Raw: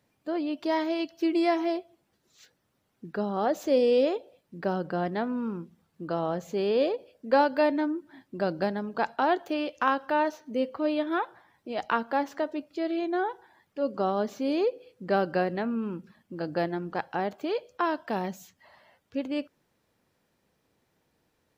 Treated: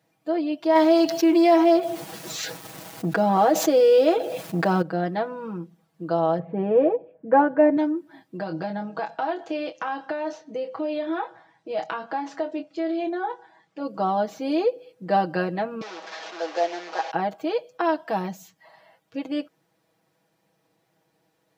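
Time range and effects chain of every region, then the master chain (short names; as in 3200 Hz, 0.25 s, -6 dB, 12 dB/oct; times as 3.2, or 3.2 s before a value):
0.75–4.82 G.711 law mismatch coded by A + fast leveller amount 70%
6.39–7.77 LPF 2100 Hz 24 dB/oct + tilt -2.5 dB/oct
8.37–13.8 LPF 7700 Hz 24 dB/oct + doubler 25 ms -8.5 dB + compressor, threshold -28 dBFS
15.81–17.11 delta modulation 32 kbps, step -32.5 dBFS + HPF 420 Hz 24 dB/oct + doubler 16 ms -13.5 dB
whole clip: HPF 100 Hz; bell 730 Hz +5.5 dB 0.54 oct; comb 6.2 ms, depth 83%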